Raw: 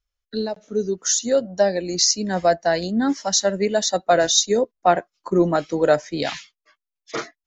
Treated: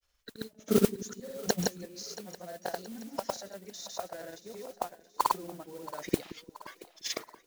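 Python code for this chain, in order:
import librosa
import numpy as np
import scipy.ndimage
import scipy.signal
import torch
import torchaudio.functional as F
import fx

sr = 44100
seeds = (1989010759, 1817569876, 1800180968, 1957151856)

p1 = fx.low_shelf(x, sr, hz=66.0, db=-10.0)
p2 = fx.over_compress(p1, sr, threshold_db=-21.0, ratio=-1.0)
p3 = p1 + (p2 * 10.0 ** (1.0 / 20.0))
p4 = fx.gate_flip(p3, sr, shuts_db=-14.0, range_db=-33)
p5 = fx.granulator(p4, sr, seeds[0], grain_ms=100.0, per_s=20.0, spray_ms=100.0, spread_st=0)
p6 = fx.mod_noise(p5, sr, seeds[1], snr_db=13)
p7 = p6 + fx.echo_split(p6, sr, split_hz=410.0, low_ms=174, high_ms=677, feedback_pct=52, wet_db=-16.0, dry=0)
y = p7 * 10.0 ** (4.5 / 20.0)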